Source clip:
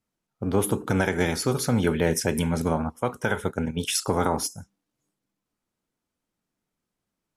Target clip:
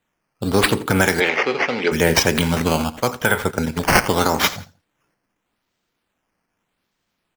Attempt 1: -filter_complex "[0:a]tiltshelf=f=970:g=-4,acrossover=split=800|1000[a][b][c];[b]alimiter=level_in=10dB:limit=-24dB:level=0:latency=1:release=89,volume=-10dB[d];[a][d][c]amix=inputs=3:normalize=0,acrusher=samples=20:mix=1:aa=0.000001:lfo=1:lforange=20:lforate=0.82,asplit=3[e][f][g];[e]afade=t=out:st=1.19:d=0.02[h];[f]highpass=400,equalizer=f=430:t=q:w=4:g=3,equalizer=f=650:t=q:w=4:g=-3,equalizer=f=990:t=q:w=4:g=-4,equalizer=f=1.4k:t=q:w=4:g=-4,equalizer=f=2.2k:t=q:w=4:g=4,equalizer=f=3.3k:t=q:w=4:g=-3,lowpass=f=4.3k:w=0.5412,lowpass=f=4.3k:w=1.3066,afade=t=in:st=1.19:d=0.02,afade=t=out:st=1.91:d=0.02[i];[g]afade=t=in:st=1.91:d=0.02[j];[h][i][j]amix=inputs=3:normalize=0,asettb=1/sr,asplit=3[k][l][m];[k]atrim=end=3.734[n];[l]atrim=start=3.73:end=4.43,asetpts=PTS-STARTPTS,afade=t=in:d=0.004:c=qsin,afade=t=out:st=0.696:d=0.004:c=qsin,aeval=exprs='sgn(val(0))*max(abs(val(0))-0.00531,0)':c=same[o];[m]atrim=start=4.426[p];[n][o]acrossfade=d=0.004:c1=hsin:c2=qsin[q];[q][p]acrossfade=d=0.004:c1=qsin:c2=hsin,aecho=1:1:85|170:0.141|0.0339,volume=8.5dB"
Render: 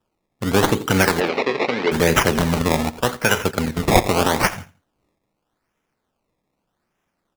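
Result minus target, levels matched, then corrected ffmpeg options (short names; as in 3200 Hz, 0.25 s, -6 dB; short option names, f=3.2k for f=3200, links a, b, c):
decimation with a swept rate: distortion +4 dB
-filter_complex "[0:a]tiltshelf=f=970:g=-4,acrossover=split=800|1000[a][b][c];[b]alimiter=level_in=10dB:limit=-24dB:level=0:latency=1:release=89,volume=-10dB[d];[a][d][c]amix=inputs=3:normalize=0,acrusher=samples=8:mix=1:aa=0.000001:lfo=1:lforange=8:lforate=0.82,asplit=3[e][f][g];[e]afade=t=out:st=1.19:d=0.02[h];[f]highpass=400,equalizer=f=430:t=q:w=4:g=3,equalizer=f=650:t=q:w=4:g=-3,equalizer=f=990:t=q:w=4:g=-4,equalizer=f=1.4k:t=q:w=4:g=-4,equalizer=f=2.2k:t=q:w=4:g=4,equalizer=f=3.3k:t=q:w=4:g=-3,lowpass=f=4.3k:w=0.5412,lowpass=f=4.3k:w=1.3066,afade=t=in:st=1.19:d=0.02,afade=t=out:st=1.91:d=0.02[i];[g]afade=t=in:st=1.91:d=0.02[j];[h][i][j]amix=inputs=3:normalize=0,asettb=1/sr,asplit=3[k][l][m];[k]atrim=end=3.734[n];[l]atrim=start=3.73:end=4.43,asetpts=PTS-STARTPTS,afade=t=in:d=0.004:c=qsin,afade=t=out:st=0.696:d=0.004:c=qsin,aeval=exprs='sgn(val(0))*max(abs(val(0))-0.00531,0)':c=same[o];[m]atrim=start=4.426[p];[n][o]acrossfade=d=0.004:c1=hsin:c2=qsin[q];[q][p]acrossfade=d=0.004:c1=qsin:c2=hsin,aecho=1:1:85|170:0.141|0.0339,volume=8.5dB"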